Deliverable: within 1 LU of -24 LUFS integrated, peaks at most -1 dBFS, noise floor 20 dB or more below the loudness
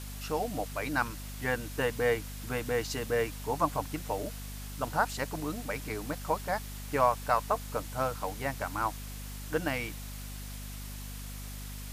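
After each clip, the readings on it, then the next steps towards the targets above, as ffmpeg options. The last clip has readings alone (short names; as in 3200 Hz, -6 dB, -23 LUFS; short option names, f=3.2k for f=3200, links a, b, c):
hum 50 Hz; harmonics up to 250 Hz; hum level -39 dBFS; noise floor -41 dBFS; noise floor target -54 dBFS; loudness -33.5 LUFS; peak -12.5 dBFS; loudness target -24.0 LUFS
-> -af "bandreject=f=50:t=h:w=6,bandreject=f=100:t=h:w=6,bandreject=f=150:t=h:w=6,bandreject=f=200:t=h:w=6,bandreject=f=250:t=h:w=6"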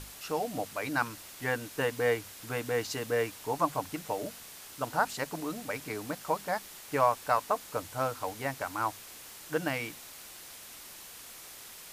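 hum none; noise floor -48 dBFS; noise floor target -53 dBFS
-> -af "afftdn=nr=6:nf=-48"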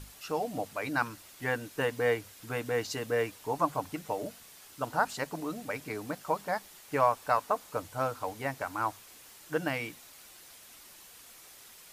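noise floor -53 dBFS; loudness -33.0 LUFS; peak -13.0 dBFS; loudness target -24.0 LUFS
-> -af "volume=9dB"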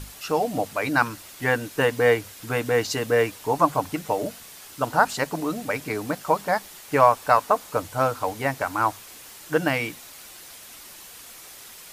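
loudness -24.0 LUFS; peak -4.0 dBFS; noise floor -44 dBFS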